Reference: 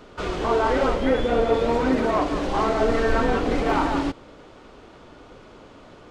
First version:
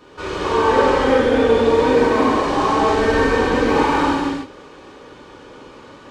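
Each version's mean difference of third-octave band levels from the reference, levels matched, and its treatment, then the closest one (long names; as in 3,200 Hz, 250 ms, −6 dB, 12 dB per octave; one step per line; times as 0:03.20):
3.0 dB: low-shelf EQ 370 Hz −4.5 dB
notch comb filter 680 Hz
reverb whose tail is shaped and stops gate 360 ms flat, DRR −8 dB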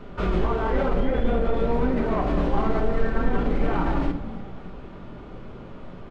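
5.5 dB: bass and treble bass +9 dB, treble −13 dB
brickwall limiter −17.5 dBFS, peak gain reduction 13.5 dB
on a send: echo with shifted repeats 290 ms, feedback 56%, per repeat −55 Hz, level −17 dB
on the sum: rectangular room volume 420 cubic metres, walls furnished, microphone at 1.2 metres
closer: first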